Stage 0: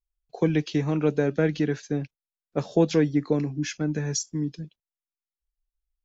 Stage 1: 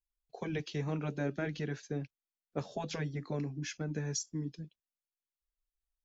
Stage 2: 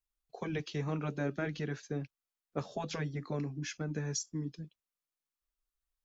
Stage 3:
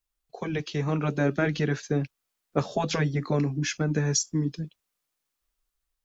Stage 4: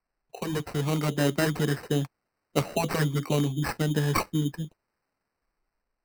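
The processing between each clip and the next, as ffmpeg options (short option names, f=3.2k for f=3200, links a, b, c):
-af "afftfilt=real='re*lt(hypot(re,im),0.562)':imag='im*lt(hypot(re,im),0.562)':win_size=1024:overlap=0.75,volume=-8dB"
-af "equalizer=f=1.2k:w=3.7:g=5"
-af "dynaudnorm=f=390:g=5:m=5.5dB,volume=5.5dB"
-af "acrusher=samples=13:mix=1:aa=0.000001"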